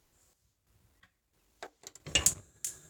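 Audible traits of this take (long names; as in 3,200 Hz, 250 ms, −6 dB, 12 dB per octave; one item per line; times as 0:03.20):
chopped level 1.5 Hz, depth 65%, duty 50%
Opus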